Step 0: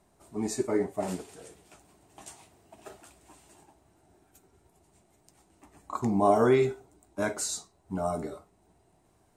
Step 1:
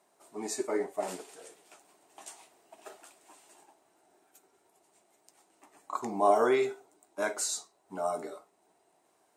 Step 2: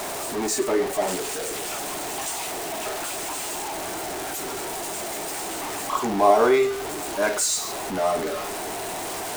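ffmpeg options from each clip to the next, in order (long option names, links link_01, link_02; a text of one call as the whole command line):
ffmpeg -i in.wav -af "highpass=420" out.wav
ffmpeg -i in.wav -af "aeval=exprs='val(0)+0.5*0.0282*sgn(val(0))':channel_layout=same,volume=6dB" out.wav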